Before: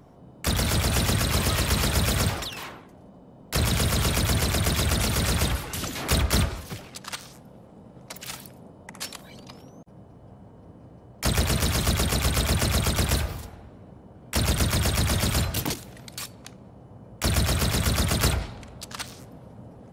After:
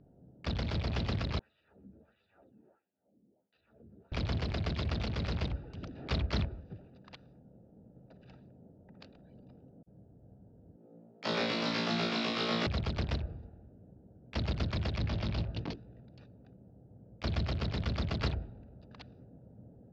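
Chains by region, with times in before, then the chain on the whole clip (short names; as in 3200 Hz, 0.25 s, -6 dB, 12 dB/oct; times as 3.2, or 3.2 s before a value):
1.39–4.12 compressor 10:1, threshold -28 dBFS + wah 1.5 Hz 220–3400 Hz, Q 2.3 + ensemble effect
10.76–12.67 HPF 200 Hz 24 dB/oct + flutter echo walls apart 3 m, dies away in 0.76 s
14.98–16.01 LPF 6800 Hz 24 dB/oct + hard clip -18.5 dBFS + doubler 18 ms -6.5 dB
whole clip: Wiener smoothing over 41 samples; steep low-pass 4800 Hz 36 dB/oct; gain -8.5 dB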